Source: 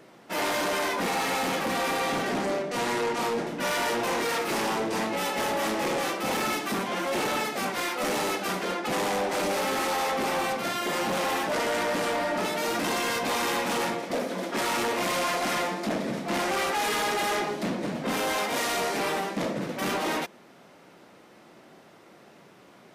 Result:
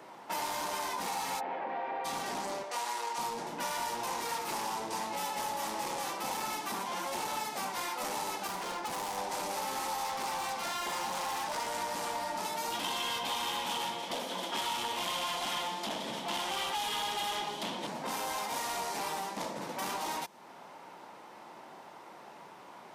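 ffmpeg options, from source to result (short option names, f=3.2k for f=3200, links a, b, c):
-filter_complex "[0:a]asplit=3[a][b][c];[a]afade=t=out:st=1.39:d=0.02[d];[b]highpass=340,equalizer=f=390:t=q:w=4:g=6,equalizer=f=650:t=q:w=4:g=7,equalizer=f=1.2k:t=q:w=4:g=-8,lowpass=f=2.1k:w=0.5412,lowpass=f=2.1k:w=1.3066,afade=t=in:st=1.39:d=0.02,afade=t=out:st=2.04:d=0.02[e];[c]afade=t=in:st=2.04:d=0.02[f];[d][e][f]amix=inputs=3:normalize=0,asettb=1/sr,asplit=3[g][h][i];[g]atrim=end=2.634[j];[h]atrim=start=2.63:end=3.18,asetpts=PTS-STARTPTS,afade=t=in:d=0.004:c=qsin,afade=t=out:st=0.546:d=0.004:c=qsin,highpass=520[k];[i]atrim=start=3.176[l];[j][k]acrossfade=d=0.004:c1=hsin:c2=qsin[m];[m][l]acrossfade=d=0.004:c1=qsin:c2=hsin,asettb=1/sr,asplit=3[n][o][p];[n]atrim=end=8.474[q];[o]atrim=start=8.47:end=9.18,asetpts=PTS-STARTPTS,afade=t=in:d=0.004:c=qsin,afade=t=out:st=0.706:d=0.004:c=qsin,asoftclip=type=hard:threshold=-30dB[r];[p]atrim=start=9.176[s];[q][r]acrossfade=d=0.004:c1=hsin:c2=qsin[t];[t][s]acrossfade=d=0.004:c1=qsin:c2=hsin,asettb=1/sr,asplit=3[u][v][w];[u]atrim=end=10.034[x];[v]atrim=start=10.03:end=11.68,asetpts=PTS-STARTPTS,afade=t=in:d=0.004:c=qsin,afade=t=out:st=1.646:d=0.004:c=qsin,asplit=2[y][z];[z]highpass=f=720:p=1,volume=11dB,asoftclip=type=tanh:threshold=-22.5dB[aa];[y][aa]amix=inputs=2:normalize=0,lowpass=f=7.3k:p=1,volume=-6dB[ab];[w]atrim=start=11.676[ac];[x][ab]acrossfade=d=0.004:c1=hsin:c2=qsin[ad];[ad][ac]acrossfade=d=0.004:c1=qsin:c2=hsin,asettb=1/sr,asplit=3[ae][af][ag];[ae]atrim=end=12.724[ah];[af]atrim=start=12.72:end=17.87,asetpts=PTS-STARTPTS,afade=t=in:d=0.004:c=qsin,afade=t=out:st=5.146:d=0.004:c=qsin,equalizer=f=3.2k:w=3:g=13.5[ai];[ag]atrim=start=17.866[aj];[ah][ai]acrossfade=d=0.004:c1=hsin:c2=qsin[ak];[ak][aj]acrossfade=d=0.004:c1=qsin:c2=hsin,equalizer=f=910:t=o:w=0.53:g=12.5,acrossover=split=180|4000[al][am][an];[al]acompressor=threshold=-47dB:ratio=4[ao];[am]acompressor=threshold=-36dB:ratio=4[ap];[an]acompressor=threshold=-40dB:ratio=4[aq];[ao][ap][aq]amix=inputs=3:normalize=0,lowshelf=f=310:g=-7"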